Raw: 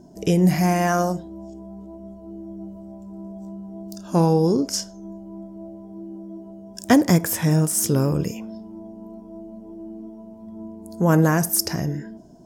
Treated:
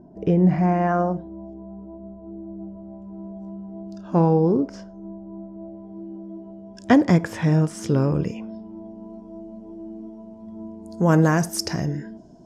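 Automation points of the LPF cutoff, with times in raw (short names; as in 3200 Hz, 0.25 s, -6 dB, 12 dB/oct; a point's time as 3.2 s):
2.54 s 1400 Hz
3.18 s 2600 Hz
4.01 s 2600 Hz
4.59 s 1500 Hz
5.39 s 1500 Hz
5.99 s 3300 Hz
8.6 s 3300 Hz
9.24 s 6300 Hz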